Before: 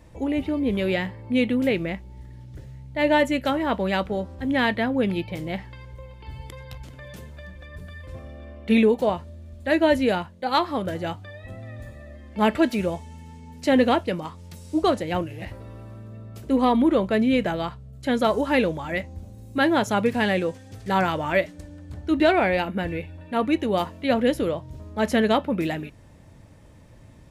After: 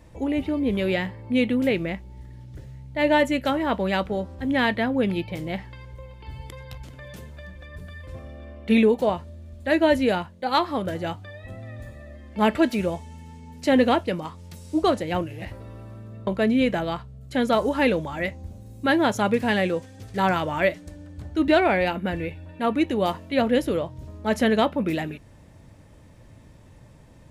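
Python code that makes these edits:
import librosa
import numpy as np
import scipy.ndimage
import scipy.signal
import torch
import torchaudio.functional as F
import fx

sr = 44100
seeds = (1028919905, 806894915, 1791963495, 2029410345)

y = fx.edit(x, sr, fx.cut(start_s=16.27, length_s=0.72), tone=tone)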